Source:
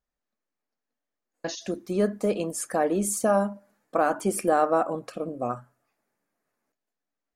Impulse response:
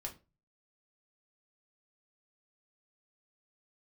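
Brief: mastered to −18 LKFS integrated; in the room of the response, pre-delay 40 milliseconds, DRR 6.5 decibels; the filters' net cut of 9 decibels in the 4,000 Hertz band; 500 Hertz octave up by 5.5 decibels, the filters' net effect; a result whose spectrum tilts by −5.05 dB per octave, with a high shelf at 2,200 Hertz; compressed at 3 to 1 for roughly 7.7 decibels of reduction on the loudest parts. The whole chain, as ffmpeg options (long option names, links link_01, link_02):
-filter_complex "[0:a]equalizer=frequency=500:width_type=o:gain=7.5,highshelf=frequency=2200:gain=-7,equalizer=frequency=4000:width_type=o:gain=-5,acompressor=threshold=-23dB:ratio=3,asplit=2[link_01][link_02];[1:a]atrim=start_sample=2205,adelay=40[link_03];[link_02][link_03]afir=irnorm=-1:irlink=0,volume=-4.5dB[link_04];[link_01][link_04]amix=inputs=2:normalize=0,volume=9dB"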